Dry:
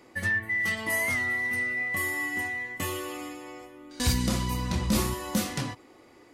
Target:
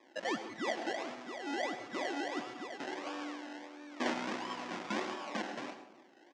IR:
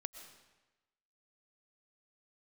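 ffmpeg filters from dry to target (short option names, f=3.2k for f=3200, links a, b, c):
-filter_complex "[0:a]asplit=3[a][b][c];[a]afade=t=out:st=0.91:d=0.02[d];[b]equalizer=f=2.2k:w=0.32:g=-8,afade=t=in:st=0.91:d=0.02,afade=t=out:st=1.46:d=0.02[e];[c]afade=t=in:st=1.46:d=0.02[f];[d][e][f]amix=inputs=3:normalize=0,asettb=1/sr,asplit=3[g][h][i];[g]atrim=end=3.064[j];[h]atrim=start=3.06:end=4.14,asetpts=PTS-STARTPTS,afade=t=in:d=0.004:c=qsin,afade=t=out:st=1.076:d=0.004:c=qsin,aecho=1:1:3.6:0.84,atrim=end_sample=47628[k];[i]atrim=start=4.136[l];[j][k]acrossfade=d=0.004:c1=hsin:c2=qsin[m];[m][l]acrossfade=d=0.004:c1=qsin:c2=hsin,acrusher=samples=30:mix=1:aa=0.000001:lfo=1:lforange=18:lforate=1.5,highpass=f=280:w=0.5412,highpass=f=280:w=1.3066,equalizer=f=450:t=q:w=4:g=-8,equalizer=f=1.9k:t=q:w=4:g=3,equalizer=f=4.2k:t=q:w=4:g=-3,lowpass=f=6.1k:w=0.5412,lowpass=f=6.1k:w=1.3066,asplit=2[n][o];[o]adelay=180,lowpass=f=1.1k:p=1,volume=-13dB,asplit=2[p][q];[q]adelay=180,lowpass=f=1.1k:p=1,volume=0.43,asplit=2[r][s];[s]adelay=180,lowpass=f=1.1k:p=1,volume=0.43,asplit=2[t][u];[u]adelay=180,lowpass=f=1.1k:p=1,volume=0.43[v];[n][p][r][t][v]amix=inputs=5:normalize=0[w];[1:a]atrim=start_sample=2205,afade=t=out:st=0.22:d=0.01,atrim=end_sample=10143,asetrate=52920,aresample=44100[x];[w][x]afir=irnorm=-1:irlink=0"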